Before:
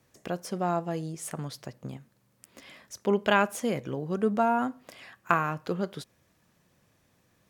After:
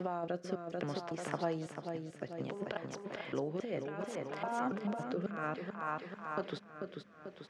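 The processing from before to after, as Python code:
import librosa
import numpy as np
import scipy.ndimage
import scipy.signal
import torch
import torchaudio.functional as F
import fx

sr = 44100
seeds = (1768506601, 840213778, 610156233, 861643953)

p1 = fx.block_reorder(x, sr, ms=277.0, group=3)
p2 = fx.dynamic_eq(p1, sr, hz=2400.0, q=0.97, threshold_db=-45.0, ratio=4.0, max_db=-4)
p3 = fx.over_compress(p2, sr, threshold_db=-30.0, ratio=-0.5)
p4 = p3 + fx.echo_feedback(p3, sr, ms=440, feedback_pct=48, wet_db=-6.0, dry=0)
p5 = fx.rotary(p4, sr, hz=0.6)
p6 = fx.highpass(p5, sr, hz=870.0, slope=6)
p7 = fx.spacing_loss(p6, sr, db_at_10k=29)
p8 = fx.band_squash(p7, sr, depth_pct=40)
y = F.gain(torch.from_numpy(p8), 6.5).numpy()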